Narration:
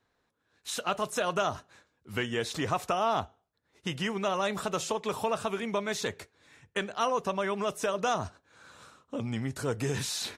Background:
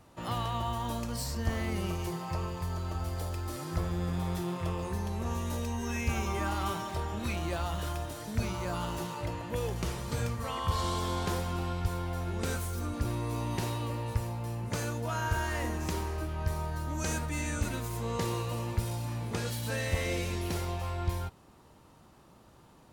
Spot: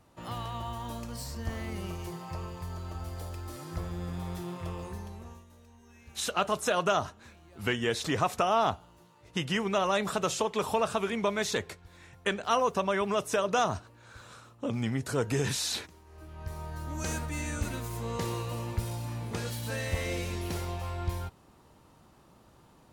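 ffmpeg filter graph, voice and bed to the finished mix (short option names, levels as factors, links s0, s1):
-filter_complex "[0:a]adelay=5500,volume=1.26[s0];[1:a]volume=7.5,afade=t=out:st=4.81:d=0.65:silence=0.11885,afade=t=in:st=16.05:d=1:silence=0.0841395[s1];[s0][s1]amix=inputs=2:normalize=0"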